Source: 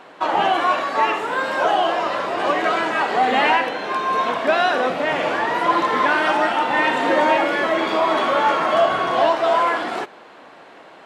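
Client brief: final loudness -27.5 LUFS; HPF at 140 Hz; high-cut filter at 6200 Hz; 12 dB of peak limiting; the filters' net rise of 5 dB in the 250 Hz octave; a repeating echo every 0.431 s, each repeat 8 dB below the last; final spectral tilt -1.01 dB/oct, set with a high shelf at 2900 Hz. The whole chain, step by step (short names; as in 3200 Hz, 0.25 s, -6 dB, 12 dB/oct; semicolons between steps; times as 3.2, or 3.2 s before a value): HPF 140 Hz; LPF 6200 Hz; bell 250 Hz +7 dB; high shelf 2900 Hz +4 dB; limiter -16.5 dBFS; feedback echo 0.431 s, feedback 40%, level -8 dB; gain -4 dB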